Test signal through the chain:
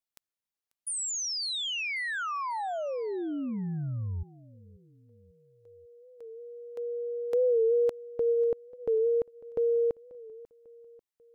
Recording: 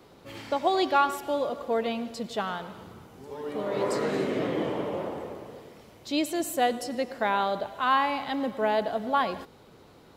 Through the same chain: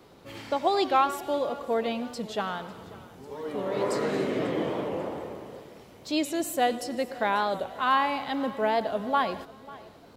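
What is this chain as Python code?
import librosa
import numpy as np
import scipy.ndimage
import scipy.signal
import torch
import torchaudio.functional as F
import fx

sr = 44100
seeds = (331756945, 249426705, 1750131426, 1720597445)

y = fx.echo_feedback(x, sr, ms=542, feedback_pct=47, wet_db=-20.5)
y = fx.record_warp(y, sr, rpm=45.0, depth_cents=100.0)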